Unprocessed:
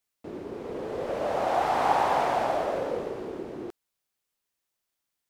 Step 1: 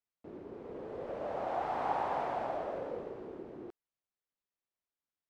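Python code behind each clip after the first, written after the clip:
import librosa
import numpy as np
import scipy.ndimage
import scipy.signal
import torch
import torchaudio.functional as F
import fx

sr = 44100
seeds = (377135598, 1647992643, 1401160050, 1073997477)

y = fx.lowpass(x, sr, hz=1800.0, slope=6)
y = y * librosa.db_to_amplitude(-9.0)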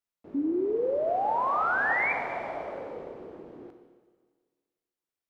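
y = fx.hum_notches(x, sr, base_hz=60, count=2)
y = fx.spec_paint(y, sr, seeds[0], shape='rise', start_s=0.34, length_s=1.79, low_hz=270.0, high_hz=2400.0, level_db=-28.0)
y = fx.rev_schroeder(y, sr, rt60_s=1.6, comb_ms=25, drr_db=6.0)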